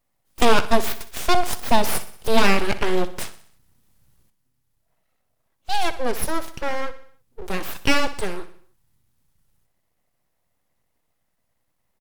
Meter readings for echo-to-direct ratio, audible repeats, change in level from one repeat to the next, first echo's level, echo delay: -13.5 dB, 4, -5.5 dB, -15.0 dB, 62 ms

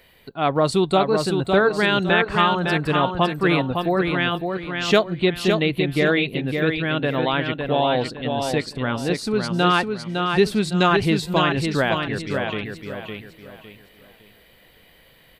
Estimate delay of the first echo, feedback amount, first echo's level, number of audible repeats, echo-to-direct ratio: 558 ms, 32%, -5.0 dB, 4, -4.5 dB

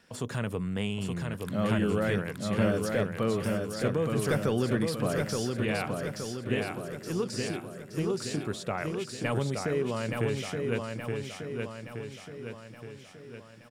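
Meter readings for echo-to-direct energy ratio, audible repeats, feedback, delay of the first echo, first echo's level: -2.5 dB, 6, 54%, 872 ms, -4.0 dB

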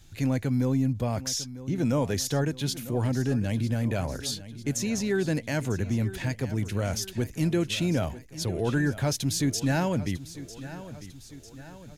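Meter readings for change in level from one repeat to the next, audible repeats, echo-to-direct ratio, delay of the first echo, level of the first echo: -5.5 dB, 3, -13.5 dB, 949 ms, -15.0 dB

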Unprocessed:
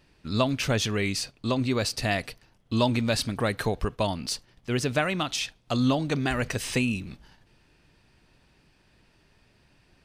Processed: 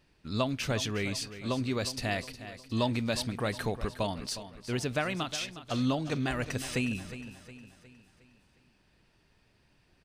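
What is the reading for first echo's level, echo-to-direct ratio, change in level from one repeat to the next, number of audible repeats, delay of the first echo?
-13.0 dB, -12.0 dB, -6.5 dB, 4, 361 ms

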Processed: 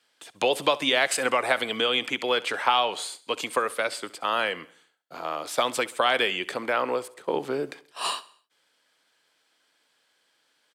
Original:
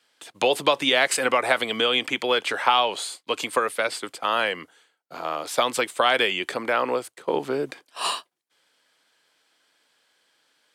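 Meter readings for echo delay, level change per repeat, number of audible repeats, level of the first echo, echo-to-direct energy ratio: 66 ms, -6.0 dB, 3, -20.0 dB, -18.5 dB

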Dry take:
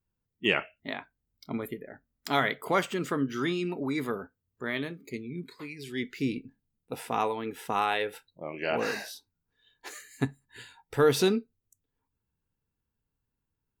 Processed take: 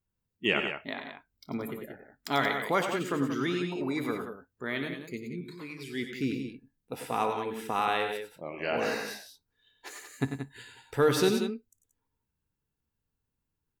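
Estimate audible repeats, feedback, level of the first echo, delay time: 3, no regular repeats, -19.5 dB, 56 ms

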